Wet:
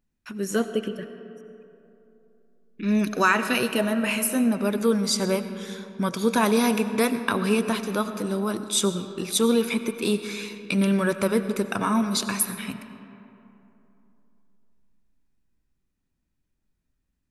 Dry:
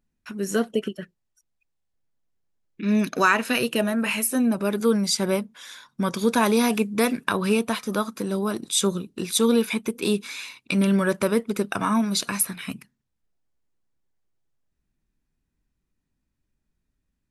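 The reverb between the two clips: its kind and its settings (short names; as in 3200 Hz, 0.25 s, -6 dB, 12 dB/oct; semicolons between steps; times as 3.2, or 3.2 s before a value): digital reverb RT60 3.1 s, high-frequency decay 0.45×, pre-delay 50 ms, DRR 10 dB; gain -1 dB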